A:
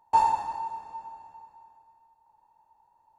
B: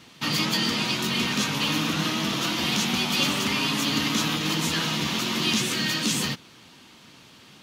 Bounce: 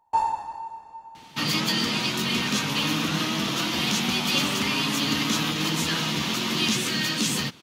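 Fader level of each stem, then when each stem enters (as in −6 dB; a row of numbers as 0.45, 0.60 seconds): −2.0, 0.0 decibels; 0.00, 1.15 seconds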